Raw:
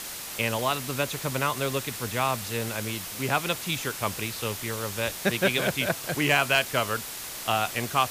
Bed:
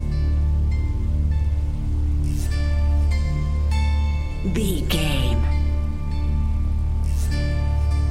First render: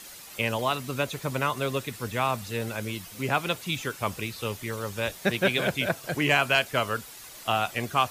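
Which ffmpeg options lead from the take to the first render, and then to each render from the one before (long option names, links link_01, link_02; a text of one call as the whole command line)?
ffmpeg -i in.wav -af "afftdn=noise_reduction=10:noise_floor=-37" out.wav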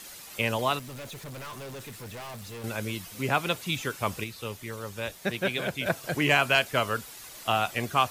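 ffmpeg -i in.wav -filter_complex "[0:a]asettb=1/sr,asplit=3[link_01][link_02][link_03];[link_01]atrim=end=0.794[link_04];[link_02]atrim=start=0.79:end=2.64,asetpts=PTS-STARTPTS,afade=type=in:duration=0.004:curve=qsin,afade=type=out:start_time=1.846:duration=0.004:curve=qsin,aeval=exprs='(tanh(79.4*val(0)+0.15)-tanh(0.15))/79.4':channel_layout=same[link_05];[link_03]atrim=start=2.636[link_06];[link_04][link_05]acrossfade=duration=0.004:curve1=hsin:curve2=qsin[link_07];[link_07][link_06]acrossfade=duration=0.004:curve1=qsin:curve2=hsin,asplit=3[link_08][link_09][link_10];[link_08]atrim=end=4.242[link_11];[link_09]atrim=start=4.238:end=5.862,asetpts=PTS-STARTPTS,volume=-4.5dB[link_12];[link_10]atrim=start=5.858[link_13];[link_11][link_12]acrossfade=duration=0.004:curve1=hsin:curve2=hsin[link_14];[link_14][link_13]acrossfade=duration=0.004:curve1=hsin:curve2=hsin" out.wav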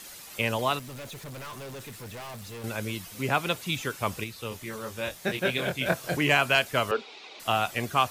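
ffmpeg -i in.wav -filter_complex "[0:a]asettb=1/sr,asplit=3[link_01][link_02][link_03];[link_01]atrim=end=4.494[link_04];[link_02]atrim=start=4.49:end=6.17,asetpts=PTS-STARTPTS,afade=type=in:duration=0.004:curve=qsin,afade=type=out:start_time=1.676:duration=0.004:curve=qsin,asplit=2[link_05][link_06];[link_06]adelay=23,volume=-4dB[link_07];[link_05][link_07]amix=inputs=2:normalize=0,atrim=end_sample=74088[link_08];[link_03]atrim=start=6.166[link_09];[link_04][link_08]acrossfade=duration=0.004:curve1=hsin:curve2=qsin[link_10];[link_10][link_09]acrossfade=duration=0.004:curve1=qsin:curve2=hsin,asettb=1/sr,asplit=3[link_11][link_12][link_13];[link_11]atrim=end=6.914[link_14];[link_12]atrim=start=6.91:end=7.4,asetpts=PTS-STARTPTS,afade=type=in:duration=0.004:curve=qsin,afade=type=out:start_time=0.486:duration=0.004:curve=qsin,highpass=frequency=230:width=0.5412,highpass=frequency=230:width=1.3066,equalizer=frequency=420:width_type=q:width=4:gain=10,equalizer=frequency=790:width_type=q:width=4:gain=7,equalizer=frequency=1700:width_type=q:width=4:gain=-7,equalizer=frequency=2400:width_type=q:width=4:gain=9,equalizer=frequency=3700:width_type=q:width=4:gain=6,lowpass=frequency=4700:width=0.5412,lowpass=frequency=4700:width=1.3066[link_15];[link_13]atrim=start=7.396[link_16];[link_14][link_15]acrossfade=duration=0.004:curve1=hsin:curve2=qsin[link_17];[link_17][link_16]acrossfade=duration=0.004:curve1=qsin:curve2=hsin" out.wav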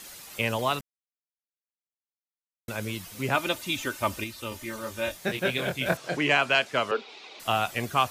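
ffmpeg -i in.wav -filter_complex "[0:a]asettb=1/sr,asplit=3[link_01][link_02][link_03];[link_01]atrim=end=3.354[link_04];[link_02]atrim=start=3.35:end=5.17,asetpts=PTS-STARTPTS,afade=type=in:duration=0.004:curve=qsin,afade=type=out:start_time=1.816:duration=0.004:curve=qsin,aecho=1:1:3.3:0.65,atrim=end_sample=80262[link_05];[link_03]atrim=start=5.166[link_06];[link_04][link_05]acrossfade=duration=0.004:curve1=hsin:curve2=qsin[link_07];[link_07][link_06]acrossfade=duration=0.004:curve1=qsin:curve2=hsin,asettb=1/sr,asplit=3[link_08][link_09][link_10];[link_08]atrim=end=5.974[link_11];[link_09]atrim=start=5.97:end=7.09,asetpts=PTS-STARTPTS,afade=type=in:duration=0.004:curve=qsin,afade=type=out:start_time=1.116:duration=0.004:curve=qsin,highpass=180,lowpass=6400[link_12];[link_10]atrim=start=7.086[link_13];[link_11][link_12]acrossfade=duration=0.004:curve1=hsin:curve2=qsin[link_14];[link_14][link_13]acrossfade=duration=0.004:curve1=qsin:curve2=hsin,asplit=3[link_15][link_16][link_17];[link_15]atrim=end=0.81,asetpts=PTS-STARTPTS,afade=type=out:start_time=0.806:duration=0.004:curve=hsin[link_18];[link_16]atrim=start=0.81:end=2.68,asetpts=PTS-STARTPTS,volume=0[link_19];[link_17]atrim=start=2.68,asetpts=PTS-STARTPTS,afade=type=in:duration=0.004:curve=hsin[link_20];[link_18][link_19][link_20]concat=n=3:v=0:a=1" out.wav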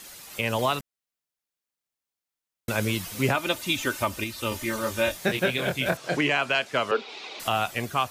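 ffmpeg -i in.wav -af "dynaudnorm=framelen=140:gausssize=7:maxgain=7dB,alimiter=limit=-13dB:level=0:latency=1:release=418" out.wav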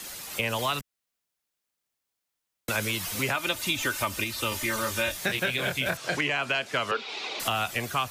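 ffmpeg -i in.wav -filter_complex "[0:a]asplit=2[link_01][link_02];[link_02]alimiter=limit=-20.5dB:level=0:latency=1:release=116,volume=-2.5dB[link_03];[link_01][link_03]amix=inputs=2:normalize=0,acrossover=split=120|520|1100[link_04][link_05][link_06][link_07];[link_04]acompressor=threshold=-42dB:ratio=4[link_08];[link_05]acompressor=threshold=-37dB:ratio=4[link_09];[link_06]acompressor=threshold=-37dB:ratio=4[link_10];[link_07]acompressor=threshold=-25dB:ratio=4[link_11];[link_08][link_09][link_10][link_11]amix=inputs=4:normalize=0" out.wav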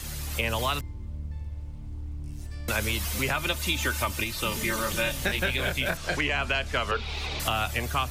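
ffmpeg -i in.wav -i bed.wav -filter_complex "[1:a]volume=-15dB[link_01];[0:a][link_01]amix=inputs=2:normalize=0" out.wav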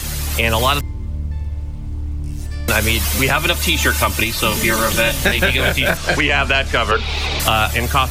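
ffmpeg -i in.wav -af "volume=12dB,alimiter=limit=-3dB:level=0:latency=1" out.wav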